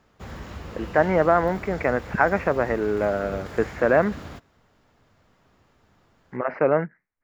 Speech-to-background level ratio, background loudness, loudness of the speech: 15.5 dB, -38.5 LUFS, -23.0 LUFS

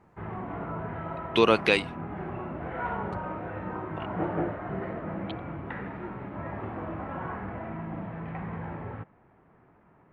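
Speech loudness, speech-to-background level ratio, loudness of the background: -24.0 LUFS, 12.0 dB, -36.0 LUFS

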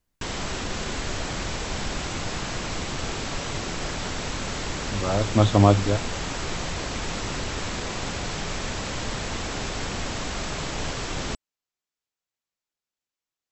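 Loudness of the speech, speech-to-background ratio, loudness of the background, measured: -21.5 LUFS, 9.0 dB, -30.5 LUFS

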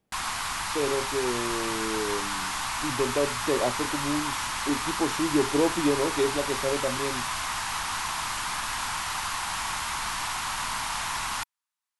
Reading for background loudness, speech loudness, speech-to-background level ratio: -29.5 LUFS, -29.5 LUFS, 0.0 dB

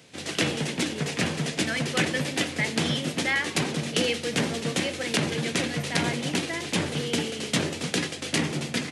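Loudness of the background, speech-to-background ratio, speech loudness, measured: -28.0 LUFS, -4.0 dB, -32.0 LUFS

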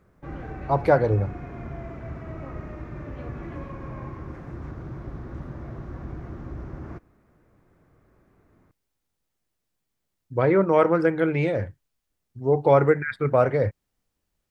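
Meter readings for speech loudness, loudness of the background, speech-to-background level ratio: -22.0 LUFS, -37.5 LUFS, 15.5 dB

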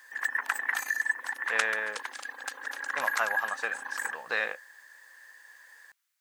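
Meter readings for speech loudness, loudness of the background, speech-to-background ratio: -32.5 LUFS, -32.0 LUFS, -0.5 dB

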